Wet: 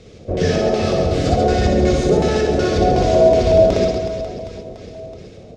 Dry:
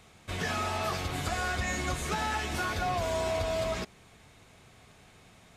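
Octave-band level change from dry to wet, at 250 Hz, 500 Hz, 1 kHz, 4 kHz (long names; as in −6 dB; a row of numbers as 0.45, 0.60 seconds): +20.0, +20.5, +11.0, +8.5 decibels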